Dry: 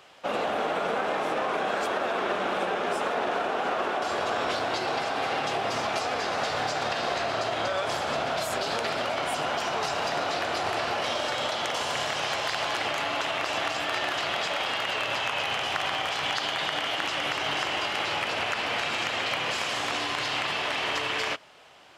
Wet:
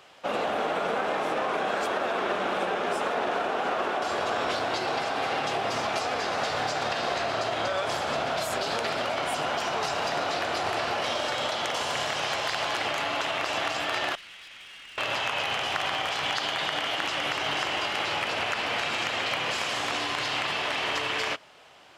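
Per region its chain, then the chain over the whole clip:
0:14.15–0:14.98: four-pole ladder band-pass 2,900 Hz, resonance 20% + tube saturation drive 41 dB, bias 0.4
whole clip: no processing

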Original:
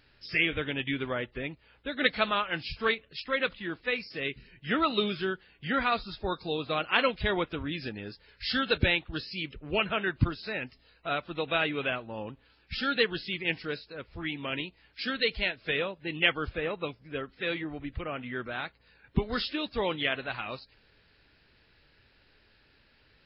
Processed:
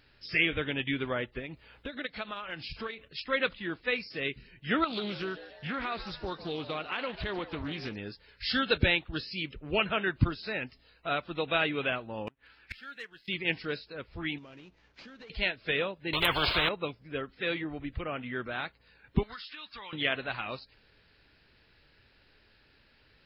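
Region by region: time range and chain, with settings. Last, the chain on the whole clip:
0:01.39–0:03.08: transient designer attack +12 dB, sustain +5 dB + downward compressor 4 to 1, threshold −37 dBFS
0:04.84–0:07.96: downward compressor 4 to 1, threshold −31 dBFS + echo with shifted repeats 148 ms, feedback 53%, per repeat +120 Hz, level −13.5 dB + highs frequency-modulated by the lows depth 0.32 ms
0:12.27–0:13.28: parametric band 1,800 Hz +11.5 dB 1.4 octaves + leveller curve on the samples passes 1 + gate with flip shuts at −25 dBFS, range −27 dB
0:14.38–0:15.30: variable-slope delta modulation 32 kbit/s + high-shelf EQ 2,100 Hz −11 dB + downward compressor 12 to 1, threshold −46 dBFS
0:16.13–0:16.69: phaser with its sweep stopped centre 1,200 Hz, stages 8 + every bin compressed towards the loudest bin 10 to 1
0:19.23–0:19.93: low shelf with overshoot 790 Hz −13.5 dB, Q 1.5 + downward compressor, threshold −41 dBFS
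whole clip: no processing

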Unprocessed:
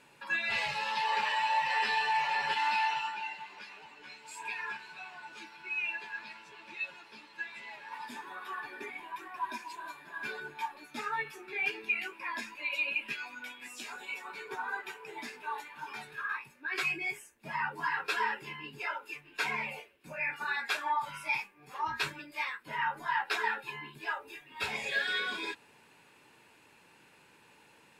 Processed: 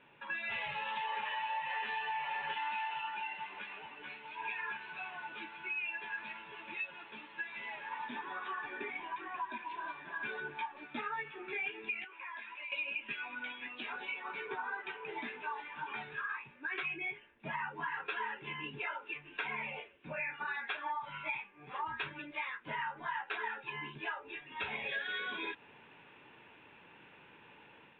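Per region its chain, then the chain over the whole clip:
0:12.04–0:12.72: Bessel high-pass filter 790 Hz + high-frequency loss of the air 91 metres + downward compressor 4 to 1, threshold −46 dBFS
whole clip: automatic gain control gain up to 5 dB; Butterworth low-pass 3,600 Hz 96 dB per octave; downward compressor 4 to 1, threshold −35 dBFS; level −2 dB

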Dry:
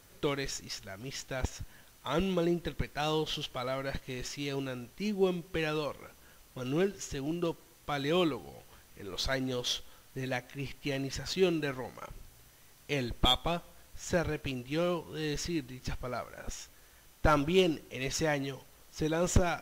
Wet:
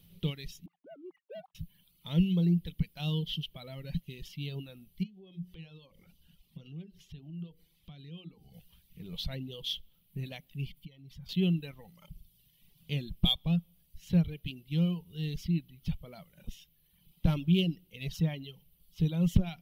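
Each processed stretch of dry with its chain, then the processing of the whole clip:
0:00.66–0:01.55: three sine waves on the formant tracks + low-pass filter 1,200 Hz 24 dB per octave + leveller curve on the samples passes 1
0:05.03–0:08.54: high-shelf EQ 9,900 Hz −9 dB + mains-hum notches 60/120/180/240/300/360/420/480/540/600 Hz + downward compressor 4 to 1, threshold −46 dBFS
0:10.71–0:11.29: downward compressor, threshold −46 dBFS + comb filter 0.9 ms, depth 32%
whole clip: drawn EQ curve 120 Hz 0 dB, 170 Hz +14 dB, 250 Hz −6 dB, 1,600 Hz −19 dB, 3,100 Hz +4 dB, 7,100 Hz −12 dB, 12,000 Hz +7 dB; reverb reduction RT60 1.3 s; high-shelf EQ 4,500 Hz −8 dB

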